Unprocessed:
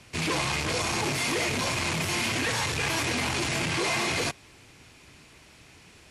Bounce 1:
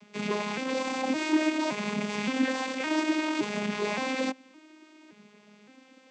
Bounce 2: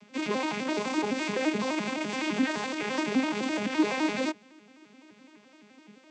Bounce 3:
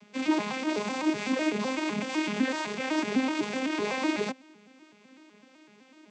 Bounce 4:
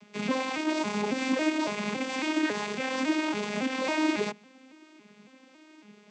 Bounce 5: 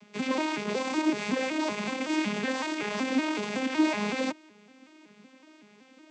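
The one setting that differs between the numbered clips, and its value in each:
vocoder with an arpeggio as carrier, a note every: 567, 85, 126, 277, 187 milliseconds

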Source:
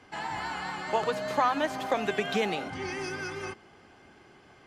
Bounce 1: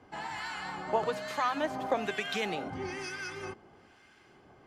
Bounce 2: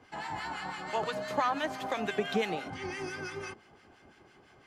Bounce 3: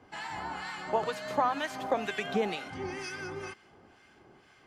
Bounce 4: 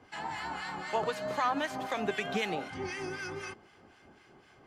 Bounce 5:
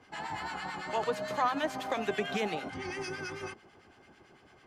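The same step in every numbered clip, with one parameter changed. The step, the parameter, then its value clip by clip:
two-band tremolo in antiphase, speed: 1.1, 5.9, 2.1, 3.9, 9 Hertz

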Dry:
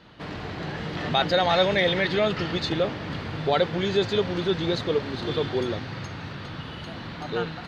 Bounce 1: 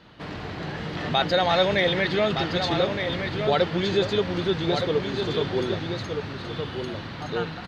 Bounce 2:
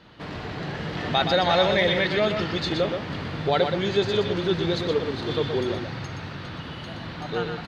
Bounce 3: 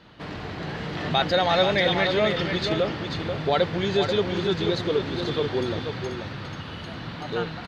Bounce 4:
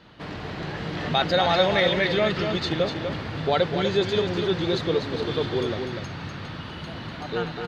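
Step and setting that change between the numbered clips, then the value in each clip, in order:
single-tap delay, delay time: 1,217, 122, 486, 246 milliseconds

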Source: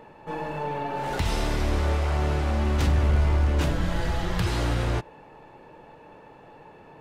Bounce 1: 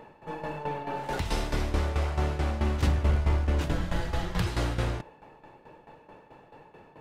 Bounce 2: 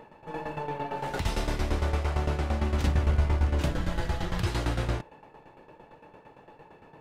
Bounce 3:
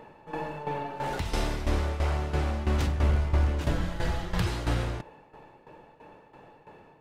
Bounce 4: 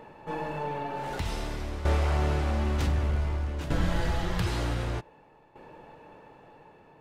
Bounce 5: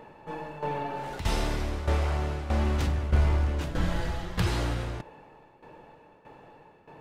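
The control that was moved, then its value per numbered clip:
shaped tremolo, speed: 4.6, 8.8, 3, 0.54, 1.6 Hertz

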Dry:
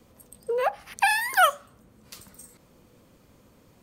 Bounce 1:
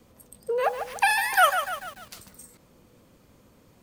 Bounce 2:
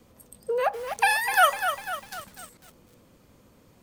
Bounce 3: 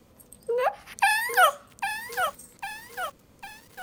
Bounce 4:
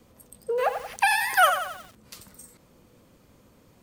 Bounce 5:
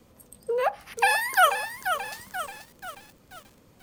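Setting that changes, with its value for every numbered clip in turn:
feedback echo at a low word length, delay time: 147, 249, 801, 91, 484 milliseconds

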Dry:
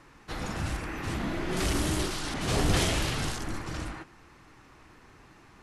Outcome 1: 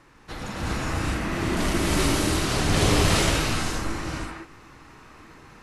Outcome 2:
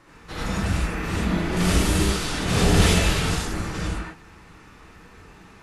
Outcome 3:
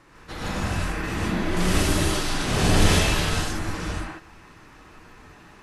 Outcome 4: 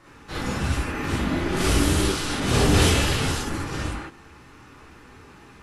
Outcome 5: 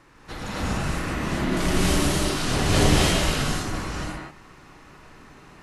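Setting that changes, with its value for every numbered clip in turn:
reverb whose tail is shaped and stops, gate: 440, 120, 180, 80, 300 milliseconds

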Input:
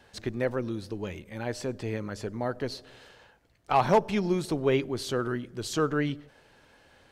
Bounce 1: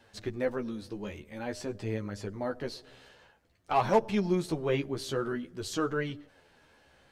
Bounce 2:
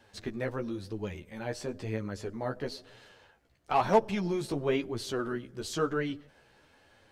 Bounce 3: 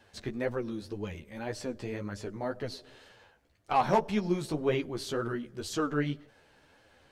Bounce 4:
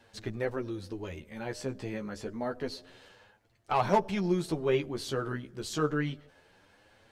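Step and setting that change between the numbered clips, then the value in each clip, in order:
flanger, speed: 0.5, 1, 1.9, 0.28 Hertz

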